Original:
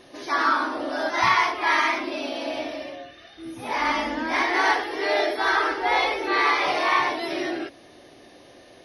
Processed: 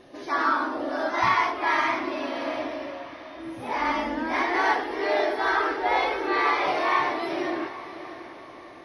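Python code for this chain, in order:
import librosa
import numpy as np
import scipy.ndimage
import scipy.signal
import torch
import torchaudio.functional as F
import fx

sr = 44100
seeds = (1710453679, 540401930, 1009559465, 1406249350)

y = fx.high_shelf(x, sr, hz=2300.0, db=-9.0)
y = fx.echo_diffused(y, sr, ms=666, feedback_pct=43, wet_db=-13.0)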